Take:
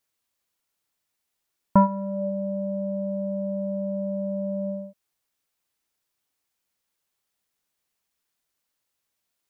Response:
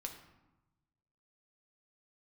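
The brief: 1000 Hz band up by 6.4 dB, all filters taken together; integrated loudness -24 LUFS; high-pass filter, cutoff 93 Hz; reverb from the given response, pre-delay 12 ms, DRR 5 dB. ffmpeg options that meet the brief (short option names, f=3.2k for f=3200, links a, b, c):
-filter_complex "[0:a]highpass=93,equalizer=f=1k:t=o:g=6.5,asplit=2[a][b];[1:a]atrim=start_sample=2205,adelay=12[c];[b][c]afir=irnorm=-1:irlink=0,volume=-2.5dB[d];[a][d]amix=inputs=2:normalize=0,volume=-1dB"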